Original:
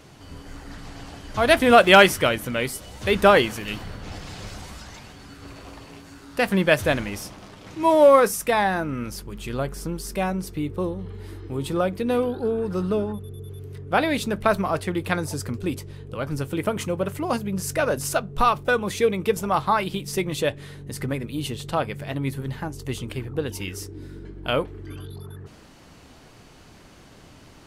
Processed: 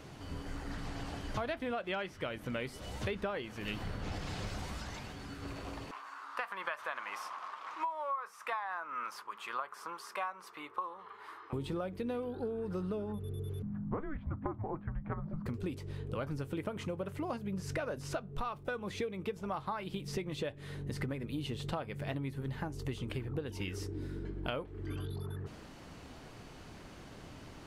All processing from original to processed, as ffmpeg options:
ffmpeg -i in.wav -filter_complex "[0:a]asettb=1/sr,asplit=3[link_01][link_02][link_03];[link_01]atrim=end=5.914[link_04];[link_02]atrim=start=5.91:end=11.53,asetpts=PTS-STARTPTS,afade=type=in:duration=0.004:curve=qsin,afade=type=out:start_time=5.616:duration=0.004:curve=qsin,acompressor=threshold=-20dB:ratio=3:attack=3.2:release=140:knee=1:detection=peak,highpass=frequency=1100:width_type=q:width=4.8,highshelf=frequency=3300:gain=-10[link_05];[link_03]atrim=start=11.526[link_06];[link_04][link_05]acrossfade=duration=0.004:curve1=hsin:curve2=qsin[link_07];[link_07][link_06]acrossfade=duration=0.004:curve1=qsin:curve2=hsin,asettb=1/sr,asplit=3[link_08][link_09][link_10];[link_08]atrim=end=13.624[link_11];[link_09]atrim=start=13.62:end=15.46,asetpts=PTS-STARTPTS,afade=type=in:duration=0.004:curve=qsin,afade=type=out:start_time=1.836:duration=0.004:curve=qsin,lowpass=frequency=1700:width=0.5412,lowpass=frequency=1700:width=1.3066,afreqshift=-300[link_12];[link_10]atrim=start=15.456[link_13];[link_11][link_12]acrossfade=duration=0.004:curve1=hsin:curve2=qsin[link_14];[link_14][link_13]acrossfade=duration=0.004:curve1=qsin:curve2=hsin,acrossover=split=5600[link_15][link_16];[link_16]acompressor=threshold=-46dB:ratio=4:attack=1:release=60[link_17];[link_15][link_17]amix=inputs=2:normalize=0,highshelf=frequency=4100:gain=-5.5,acompressor=threshold=-32dB:ratio=20,volume=-1.5dB" out.wav

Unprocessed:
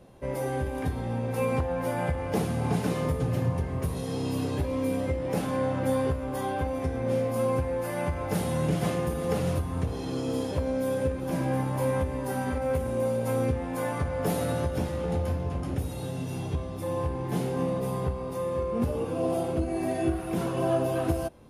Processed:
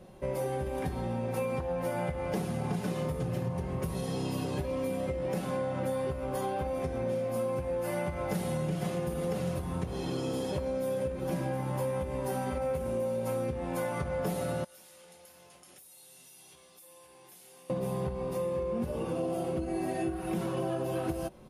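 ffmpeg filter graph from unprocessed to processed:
ffmpeg -i in.wav -filter_complex "[0:a]asettb=1/sr,asplit=3[link_01][link_02][link_03];[link_01]atrim=end=14.644[link_04];[link_02]atrim=start=14.64:end=17.7,asetpts=PTS-STARTPTS,afade=type=in:duration=0.004:curve=qsin,afade=type=out:start_time=3.056:duration=0.004:curve=qsin,aderivative,acompressor=threshold=-51dB:ratio=12:attack=3.2:release=140:knee=1:detection=peak[link_05];[link_03]atrim=start=17.696[link_06];[link_04][link_05]acrossfade=duration=0.004:curve1=hsin:curve2=qsin[link_07];[link_07][link_06]acrossfade=duration=0.004:curve1=qsin:curve2=hsin,aecho=1:1:5.4:0.48,acompressor=threshold=-29dB:ratio=6" out.wav

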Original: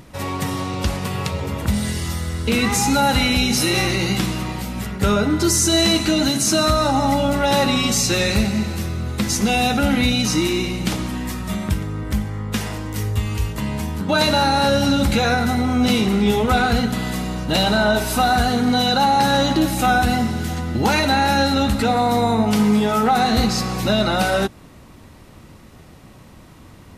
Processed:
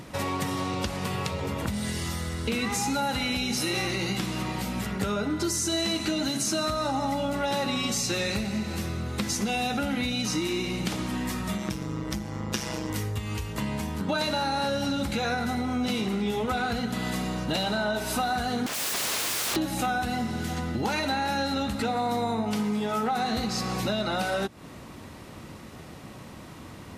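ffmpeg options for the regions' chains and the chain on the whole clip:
ffmpeg -i in.wav -filter_complex "[0:a]asettb=1/sr,asplit=3[link_01][link_02][link_03];[link_01]atrim=end=11.584[link_04];[link_02]atrim=start=11.58:end=12.9,asetpts=PTS-STARTPTS,afade=type=in:duration=0.004:curve=qsin,afade=type=out:start_time=1.316:duration=0.004:curve=qsin,equalizer=frequency=5600:width_type=o:width=0.43:gain=8.5,aecho=1:1:6.1:0.51,atrim=end_sample=58212,tremolo=f=130:d=0.71[link_05];[link_03]atrim=start=12.896[link_06];[link_04][link_05]acrossfade=duration=0.004:curve1=hsin:curve2=qsin[link_07];[link_07][link_06]acrossfade=duration=0.004:curve1=qsin:curve2=hsin,asettb=1/sr,asplit=3[link_08][link_09][link_10];[link_08]atrim=end=18.664[link_11];[link_09]atrim=start=18.66:end=19.56,asetpts=PTS-STARTPTS,afade=type=in:duration=0.004:curve=qsin,afade=type=out:start_time=0.896:duration=0.004:curve=qsin,highpass=frequency=77:poles=1,equalizer=frequency=5000:width_type=o:width=2.5:gain=2.5,aeval=exprs='(mod(10.6*val(0)+1,2)-1)/10.6':channel_layout=same[link_12];[link_10]atrim=start=19.556[link_13];[link_11][link_12]acrossfade=duration=0.004:curve1=hsin:curve2=qsin[link_14];[link_14][link_13]acrossfade=duration=0.004:curve1=qsin:curve2=hsin,acompressor=threshold=-28dB:ratio=5,highpass=frequency=120:poles=1,highshelf=frequency=12000:gain=-5,volume=2.5dB" out.wav

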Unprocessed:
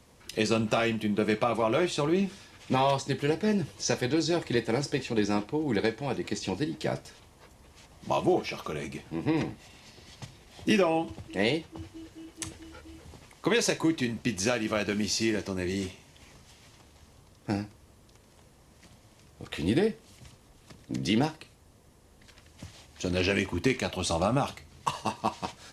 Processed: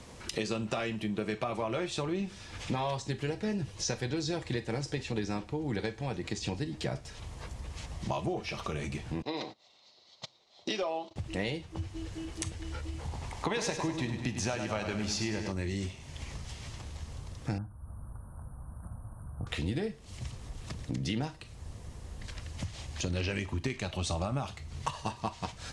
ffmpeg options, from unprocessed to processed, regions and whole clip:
ffmpeg -i in.wav -filter_complex "[0:a]asettb=1/sr,asplit=3[link_01][link_02][link_03];[link_01]atrim=end=9.224[link_04];[link_02]atrim=start=9.22:end=11.16,asetpts=PTS-STARTPTS,afade=type=in:duration=0.004:curve=qsin,afade=type=out:start_time=1.936:duration=0.004:curve=qsin,agate=range=-18dB:threshold=-40dB:ratio=16:release=100:detection=peak,highpass=460,equalizer=frequency=600:width_type=q:width=4:gain=4,equalizer=frequency=1700:width_type=q:width=4:gain=-10,equalizer=frequency=2600:width_type=q:width=4:gain=-6,equalizer=frequency=4000:width_type=q:width=4:gain=10,lowpass=frequency=6200:width=0.5412,lowpass=frequency=6200:width=1.3066,asoftclip=type=hard:threshold=-17dB[link_05];[link_03]atrim=start=11.156[link_06];[link_04][link_05]acrossfade=duration=0.004:curve1=hsin:curve2=qsin[link_07];[link_07][link_06]acrossfade=duration=0.004:curve1=qsin:curve2=hsin,asettb=1/sr,asplit=3[link_08][link_09][link_10];[link_08]atrim=end=12.994[link_11];[link_09]atrim=start=12.99:end=15.52,asetpts=PTS-STARTPTS,afade=type=in:duration=0.004:curve=qsin,afade=type=out:start_time=2.526:duration=0.004:curve=qsin,equalizer=frequency=840:width=2.1:gain=9,aecho=1:1:100|200|300|400|500|600:0.376|0.195|0.102|0.0528|0.0275|0.0143,atrim=end_sample=111573[link_12];[link_10]atrim=start=15.516[link_13];[link_11][link_12]acrossfade=duration=0.004:curve1=hsin:curve2=qsin[link_14];[link_14][link_13]acrossfade=duration=0.004:curve1=qsin:curve2=hsin,asettb=1/sr,asplit=3[link_15][link_16][link_17];[link_15]atrim=end=17.584[link_18];[link_16]atrim=start=17.58:end=19.47,asetpts=PTS-STARTPTS,afade=type=in:duration=0.004:curve=qsin,afade=type=out:start_time=1.886:duration=0.004:curve=qsin,asuperstop=centerf=3900:order=20:qfactor=0.52,equalizer=frequency=410:width_type=o:width=0.92:gain=-11[link_19];[link_17]atrim=start=19.466[link_20];[link_18][link_19]acrossfade=duration=0.004:curve1=hsin:curve2=qsin[link_21];[link_21][link_20]acrossfade=duration=0.004:curve1=qsin:curve2=hsin,asubboost=boost=3:cutoff=140,acompressor=threshold=-44dB:ratio=3,lowpass=frequency=9800:width=0.5412,lowpass=frequency=9800:width=1.3066,volume=8.5dB" out.wav

